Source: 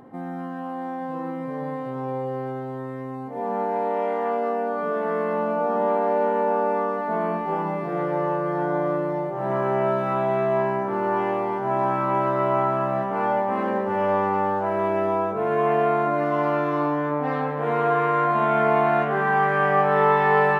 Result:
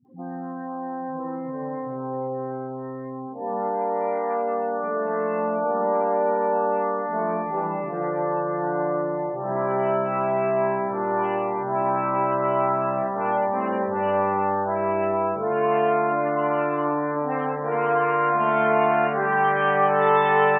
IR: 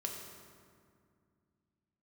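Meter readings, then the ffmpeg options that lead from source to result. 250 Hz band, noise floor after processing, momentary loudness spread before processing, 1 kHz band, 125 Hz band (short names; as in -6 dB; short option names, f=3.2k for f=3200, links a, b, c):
-1.5 dB, -33 dBFS, 11 LU, 0.0 dB, -3.5 dB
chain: -filter_complex "[0:a]afftdn=nr=31:nf=-37,aexciter=amount=4.6:drive=1.3:freq=2.8k,acrossover=split=190[a][b];[b]adelay=50[c];[a][c]amix=inputs=2:normalize=0"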